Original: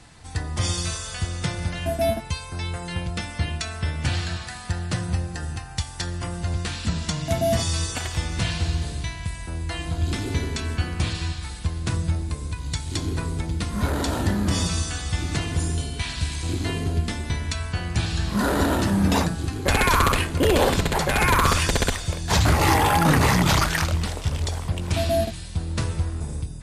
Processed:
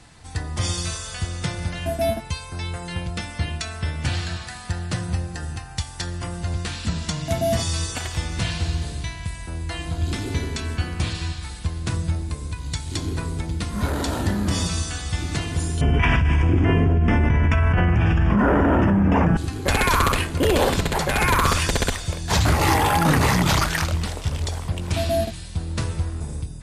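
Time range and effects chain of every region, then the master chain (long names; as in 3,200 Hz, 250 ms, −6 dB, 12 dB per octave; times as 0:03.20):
0:15.81–0:19.37: Butterworth band-reject 4,100 Hz, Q 1.5 + high-frequency loss of the air 350 metres + envelope flattener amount 100%
whole clip: no processing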